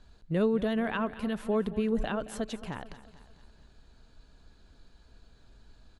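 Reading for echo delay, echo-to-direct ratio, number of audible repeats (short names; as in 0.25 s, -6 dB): 0.223 s, -14.0 dB, 4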